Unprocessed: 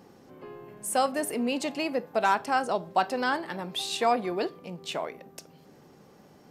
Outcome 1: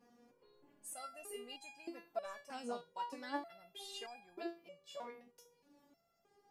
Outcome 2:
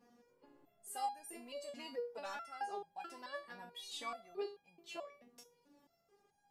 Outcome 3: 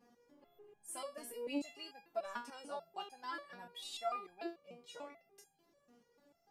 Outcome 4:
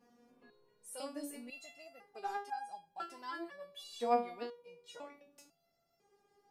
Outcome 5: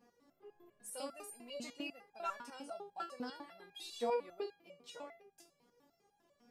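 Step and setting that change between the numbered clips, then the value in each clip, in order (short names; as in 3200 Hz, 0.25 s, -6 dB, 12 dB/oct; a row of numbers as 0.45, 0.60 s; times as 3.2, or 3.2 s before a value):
stepped resonator, rate: 3.2, 4.6, 6.8, 2, 10 Hz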